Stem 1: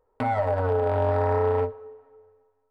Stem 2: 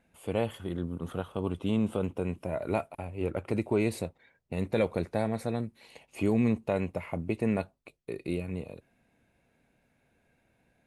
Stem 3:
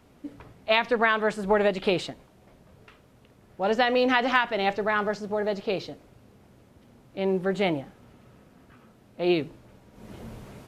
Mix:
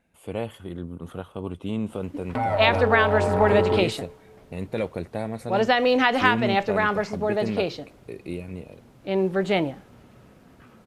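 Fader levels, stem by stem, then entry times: 0.0, -0.5, +2.5 dB; 2.15, 0.00, 1.90 s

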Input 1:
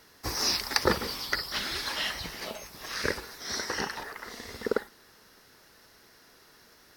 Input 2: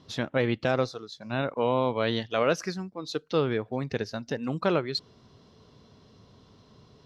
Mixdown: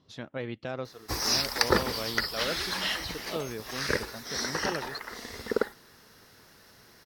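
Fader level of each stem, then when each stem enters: +1.0, -10.0 dB; 0.85, 0.00 s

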